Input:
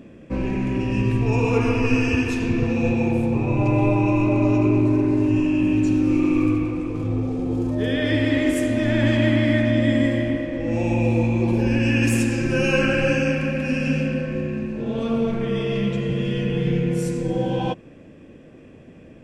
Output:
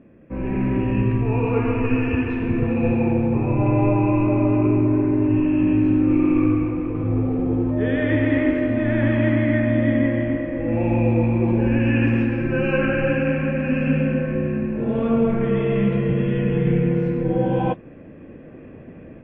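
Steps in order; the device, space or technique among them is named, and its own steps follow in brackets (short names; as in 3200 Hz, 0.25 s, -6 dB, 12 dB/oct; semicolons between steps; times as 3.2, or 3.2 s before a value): action camera in a waterproof case (LPF 2300 Hz 24 dB/oct; AGC; gain -6.5 dB; AAC 48 kbps 24000 Hz)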